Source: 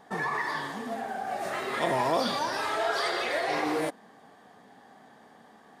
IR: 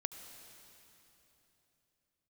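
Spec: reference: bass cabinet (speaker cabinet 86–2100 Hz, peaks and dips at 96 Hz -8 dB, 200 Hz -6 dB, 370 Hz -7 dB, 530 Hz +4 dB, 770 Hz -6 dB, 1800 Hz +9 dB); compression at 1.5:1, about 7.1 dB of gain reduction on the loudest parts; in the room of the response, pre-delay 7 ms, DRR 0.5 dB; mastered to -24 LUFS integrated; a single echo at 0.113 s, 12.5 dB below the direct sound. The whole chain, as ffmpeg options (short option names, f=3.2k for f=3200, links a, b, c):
-filter_complex "[0:a]acompressor=threshold=-43dB:ratio=1.5,aecho=1:1:113:0.237,asplit=2[a][b];[1:a]atrim=start_sample=2205,adelay=7[c];[b][c]afir=irnorm=-1:irlink=0,volume=0.5dB[d];[a][d]amix=inputs=2:normalize=0,highpass=f=86:w=0.5412,highpass=f=86:w=1.3066,equalizer=f=96:t=q:w=4:g=-8,equalizer=f=200:t=q:w=4:g=-6,equalizer=f=370:t=q:w=4:g=-7,equalizer=f=530:t=q:w=4:g=4,equalizer=f=770:t=q:w=4:g=-6,equalizer=f=1.8k:t=q:w=4:g=9,lowpass=f=2.1k:w=0.5412,lowpass=f=2.1k:w=1.3066,volume=7.5dB"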